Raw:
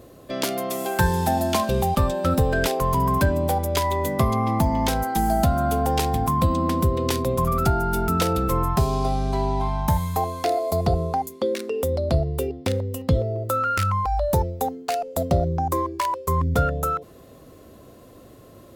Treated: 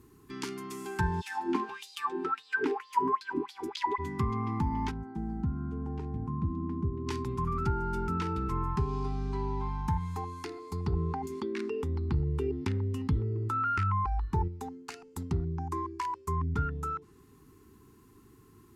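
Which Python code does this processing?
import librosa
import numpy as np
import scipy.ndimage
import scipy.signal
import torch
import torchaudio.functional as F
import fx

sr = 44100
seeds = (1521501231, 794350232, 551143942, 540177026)

y = fx.filter_lfo_highpass(x, sr, shape='sine', hz=fx.line((1.2, 1.1), (3.98, 4.6)), low_hz=290.0, high_hz=4400.0, q=5.1, at=(1.2, 3.98), fade=0.02)
y = fx.bandpass_q(y, sr, hz=170.0, q=0.53, at=(4.9, 7.06), fade=0.02)
y = fx.env_flatten(y, sr, amount_pct=50, at=(10.92, 14.48))
y = fx.env_lowpass_down(y, sr, base_hz=2500.0, full_db=-15.5)
y = scipy.signal.sosfilt(scipy.signal.cheby1(3, 1.0, [420.0, 850.0], 'bandstop', fs=sr, output='sos'), y)
y = fx.peak_eq(y, sr, hz=3600.0, db=-7.0, octaves=0.69)
y = y * 10.0 ** (-8.5 / 20.0)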